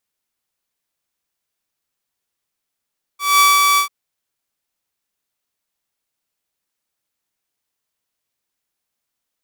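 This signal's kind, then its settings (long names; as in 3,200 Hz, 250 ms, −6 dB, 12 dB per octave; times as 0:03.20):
note with an ADSR envelope saw 1,150 Hz, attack 202 ms, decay 203 ms, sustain −3 dB, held 0.59 s, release 102 ms −6 dBFS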